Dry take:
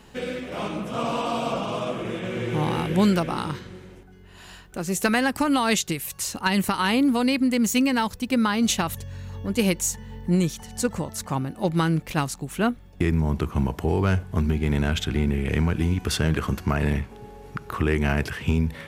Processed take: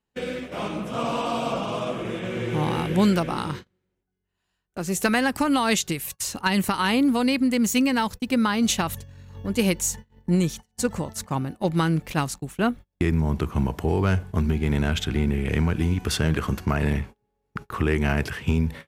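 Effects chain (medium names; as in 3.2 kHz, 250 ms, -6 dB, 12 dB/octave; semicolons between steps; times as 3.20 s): gate -34 dBFS, range -33 dB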